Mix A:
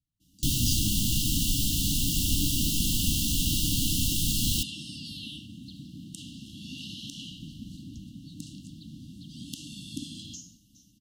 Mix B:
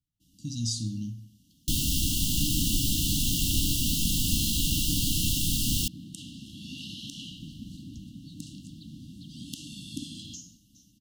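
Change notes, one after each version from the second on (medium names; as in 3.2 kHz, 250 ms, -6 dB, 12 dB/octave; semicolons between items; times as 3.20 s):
first sound: entry +1.25 s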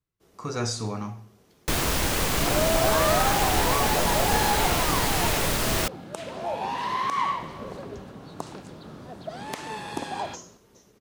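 master: remove brick-wall FIR band-stop 320–2700 Hz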